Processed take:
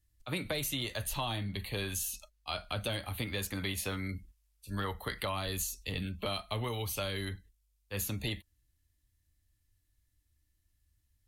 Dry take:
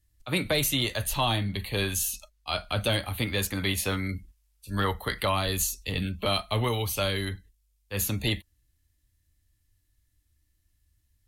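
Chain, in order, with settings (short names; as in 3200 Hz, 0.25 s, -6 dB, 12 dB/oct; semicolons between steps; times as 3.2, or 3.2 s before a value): compressor 3:1, threshold -28 dBFS, peak gain reduction 5.5 dB; gain -4.5 dB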